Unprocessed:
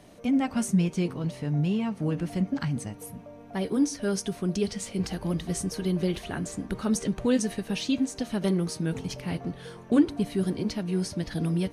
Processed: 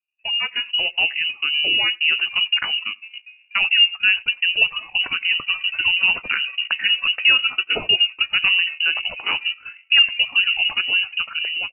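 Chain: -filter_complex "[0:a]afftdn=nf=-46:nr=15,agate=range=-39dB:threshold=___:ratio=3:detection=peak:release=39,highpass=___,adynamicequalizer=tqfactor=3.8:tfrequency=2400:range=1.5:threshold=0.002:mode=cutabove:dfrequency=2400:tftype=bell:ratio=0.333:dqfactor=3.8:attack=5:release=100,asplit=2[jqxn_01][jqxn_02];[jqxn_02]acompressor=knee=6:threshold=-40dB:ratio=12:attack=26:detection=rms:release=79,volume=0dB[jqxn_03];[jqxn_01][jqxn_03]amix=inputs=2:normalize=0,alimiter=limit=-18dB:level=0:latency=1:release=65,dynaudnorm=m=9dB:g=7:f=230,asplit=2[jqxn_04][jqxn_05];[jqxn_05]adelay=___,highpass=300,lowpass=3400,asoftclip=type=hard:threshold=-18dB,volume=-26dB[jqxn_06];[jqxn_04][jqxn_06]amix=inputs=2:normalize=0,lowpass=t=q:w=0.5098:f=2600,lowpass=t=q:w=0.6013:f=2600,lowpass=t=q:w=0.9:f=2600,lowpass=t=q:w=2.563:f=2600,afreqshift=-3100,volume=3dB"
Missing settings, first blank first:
-37dB, 340, 90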